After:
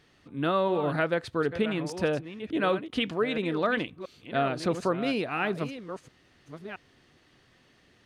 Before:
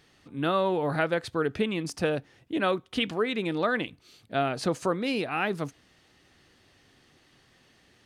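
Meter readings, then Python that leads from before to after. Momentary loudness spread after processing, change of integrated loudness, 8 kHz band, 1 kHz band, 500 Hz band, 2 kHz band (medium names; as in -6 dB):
15 LU, 0.0 dB, -4.5 dB, -0.5 dB, 0.0 dB, -0.5 dB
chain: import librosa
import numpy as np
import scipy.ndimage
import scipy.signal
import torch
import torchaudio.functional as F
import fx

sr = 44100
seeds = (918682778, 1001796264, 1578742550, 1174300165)

y = fx.reverse_delay(x, sr, ms=676, wet_db=-11.0)
y = fx.high_shelf(y, sr, hz=5200.0, db=-7.0)
y = fx.notch(y, sr, hz=810.0, q=17.0)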